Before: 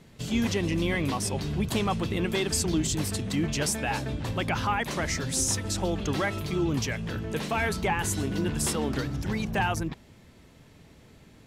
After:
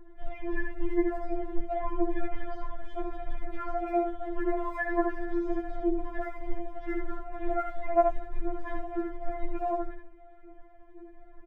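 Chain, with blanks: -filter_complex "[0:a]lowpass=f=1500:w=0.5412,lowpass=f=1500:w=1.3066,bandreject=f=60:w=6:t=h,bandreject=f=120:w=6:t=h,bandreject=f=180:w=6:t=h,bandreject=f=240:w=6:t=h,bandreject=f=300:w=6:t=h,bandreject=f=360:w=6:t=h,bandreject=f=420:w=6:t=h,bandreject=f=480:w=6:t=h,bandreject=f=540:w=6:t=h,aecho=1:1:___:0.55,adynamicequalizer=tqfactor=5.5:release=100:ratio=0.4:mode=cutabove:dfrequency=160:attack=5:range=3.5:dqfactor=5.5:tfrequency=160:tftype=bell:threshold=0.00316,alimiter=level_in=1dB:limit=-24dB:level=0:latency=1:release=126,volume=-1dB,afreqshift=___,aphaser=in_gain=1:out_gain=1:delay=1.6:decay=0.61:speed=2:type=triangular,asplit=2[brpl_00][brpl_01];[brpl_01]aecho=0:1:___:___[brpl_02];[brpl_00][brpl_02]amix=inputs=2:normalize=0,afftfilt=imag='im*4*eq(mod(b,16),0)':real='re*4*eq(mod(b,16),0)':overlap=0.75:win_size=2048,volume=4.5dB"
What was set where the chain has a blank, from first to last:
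3.6, -180, 74, 0.562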